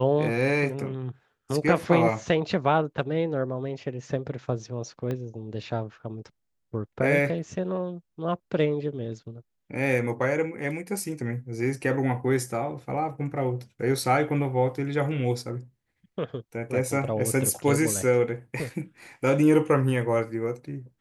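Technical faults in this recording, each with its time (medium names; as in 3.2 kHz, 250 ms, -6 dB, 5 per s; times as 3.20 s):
5.11 s: pop -20 dBFS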